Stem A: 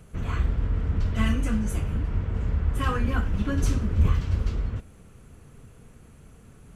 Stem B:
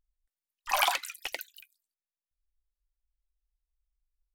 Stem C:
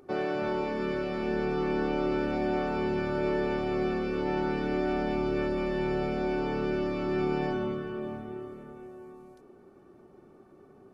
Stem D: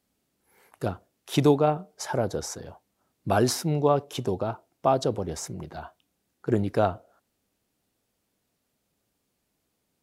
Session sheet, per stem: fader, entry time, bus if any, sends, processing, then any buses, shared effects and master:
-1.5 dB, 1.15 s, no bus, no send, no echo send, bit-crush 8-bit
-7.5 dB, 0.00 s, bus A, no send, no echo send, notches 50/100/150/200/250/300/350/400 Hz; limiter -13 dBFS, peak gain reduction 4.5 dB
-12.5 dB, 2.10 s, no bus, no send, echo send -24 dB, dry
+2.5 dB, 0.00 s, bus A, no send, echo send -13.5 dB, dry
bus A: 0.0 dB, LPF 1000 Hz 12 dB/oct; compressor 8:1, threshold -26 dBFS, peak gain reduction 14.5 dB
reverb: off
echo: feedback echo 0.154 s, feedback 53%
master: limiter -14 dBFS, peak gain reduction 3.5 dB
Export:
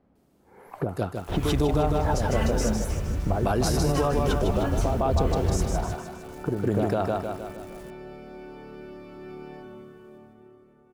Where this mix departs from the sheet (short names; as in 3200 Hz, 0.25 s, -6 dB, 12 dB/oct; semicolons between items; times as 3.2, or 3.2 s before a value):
stem B -7.5 dB -> -15.5 dB; stem D +2.5 dB -> +14.0 dB